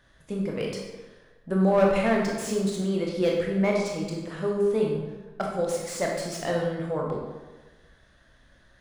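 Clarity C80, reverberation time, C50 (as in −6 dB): 4.5 dB, 1.2 s, 1.5 dB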